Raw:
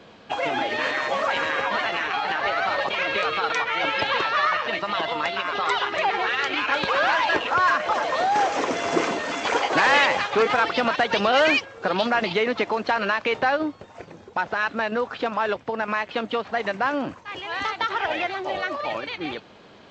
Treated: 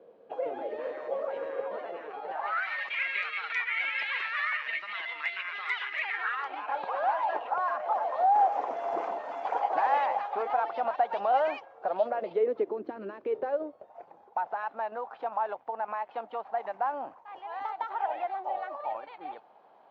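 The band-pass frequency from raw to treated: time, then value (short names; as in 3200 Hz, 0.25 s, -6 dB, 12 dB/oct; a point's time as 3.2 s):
band-pass, Q 4.4
2.26 s 490 Hz
2.67 s 2100 Hz
6.1 s 2100 Hz
6.56 s 770 Hz
11.77 s 770 Hz
13 s 300 Hz
14.06 s 800 Hz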